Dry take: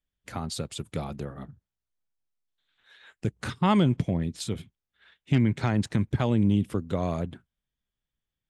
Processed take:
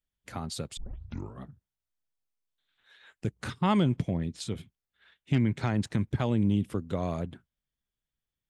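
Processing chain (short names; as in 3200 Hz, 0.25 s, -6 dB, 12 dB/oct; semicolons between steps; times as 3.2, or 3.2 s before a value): 0.77 tape start 0.66 s; 4.13–4.54 LPF 9400 Hz 12 dB/oct; gain -3 dB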